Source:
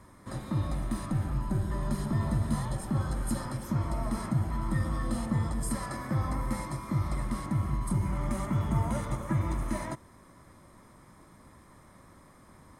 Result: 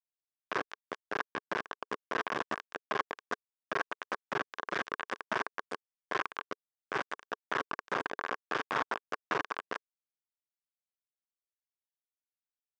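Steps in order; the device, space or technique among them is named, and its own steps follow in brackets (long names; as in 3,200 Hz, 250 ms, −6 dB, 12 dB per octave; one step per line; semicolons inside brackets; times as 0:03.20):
hand-held game console (bit reduction 4 bits; loudspeaker in its box 410–5,000 Hz, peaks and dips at 430 Hz +4 dB, 1,100 Hz +8 dB, 1,600 Hz +9 dB, 4,200 Hz −7 dB)
level −5 dB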